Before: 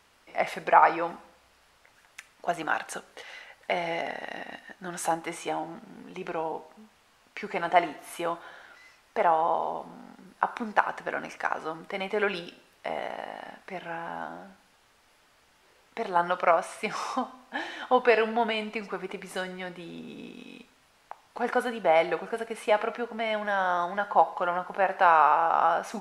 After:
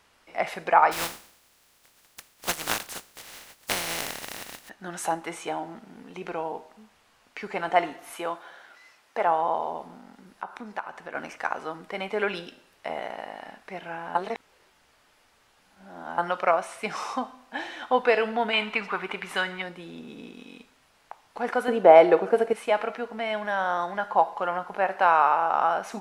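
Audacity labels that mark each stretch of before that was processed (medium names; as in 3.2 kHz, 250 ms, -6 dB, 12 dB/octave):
0.910000	4.680000	spectral contrast reduction exponent 0.24
8.130000	9.270000	high-pass 250 Hz 6 dB/octave
9.970000	11.150000	compression 1.5:1, threshold -45 dBFS
14.150000	16.180000	reverse
18.530000	19.620000	high-order bell 1.8 kHz +9 dB 2.4 oct
21.680000	22.530000	peaking EQ 420 Hz +12 dB 2.3 oct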